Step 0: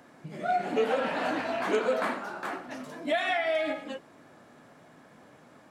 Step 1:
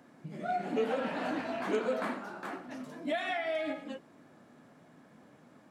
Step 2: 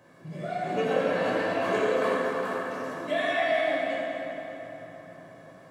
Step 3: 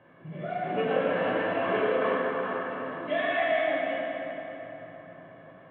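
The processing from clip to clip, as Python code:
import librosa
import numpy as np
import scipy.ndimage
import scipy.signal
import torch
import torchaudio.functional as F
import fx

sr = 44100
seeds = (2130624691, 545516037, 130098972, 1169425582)

y1 = fx.peak_eq(x, sr, hz=210.0, db=6.5, octaves=1.5)
y1 = F.gain(torch.from_numpy(y1), -6.5).numpy()
y2 = y1 + 0.44 * np.pad(y1, (int(1.8 * sr / 1000.0), 0))[:len(y1)]
y2 = fx.rev_fdn(y2, sr, rt60_s=3.9, lf_ratio=1.0, hf_ratio=0.65, size_ms=53.0, drr_db=-6.5)
y3 = scipy.signal.sosfilt(scipy.signal.ellip(4, 1.0, 50, 3200.0, 'lowpass', fs=sr, output='sos'), y2)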